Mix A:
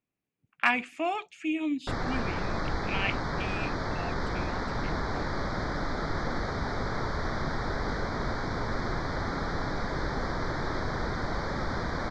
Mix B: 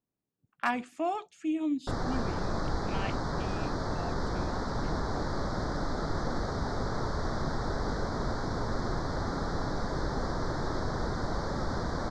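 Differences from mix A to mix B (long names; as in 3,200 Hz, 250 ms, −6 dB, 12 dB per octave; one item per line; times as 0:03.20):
background: remove high-frequency loss of the air 53 metres
master: add parametric band 2,400 Hz −14.5 dB 0.91 octaves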